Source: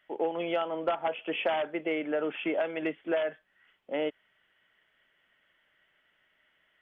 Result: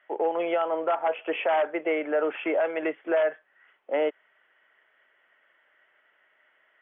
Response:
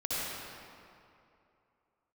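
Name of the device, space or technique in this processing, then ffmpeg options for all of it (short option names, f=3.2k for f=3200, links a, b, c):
DJ mixer with the lows and highs turned down: -filter_complex "[0:a]acrossover=split=350 2400:gain=0.0891 1 0.0708[a][b][c];[a][b][c]amix=inputs=3:normalize=0,alimiter=level_in=1dB:limit=-24dB:level=0:latency=1:release=17,volume=-1dB,volume=8dB"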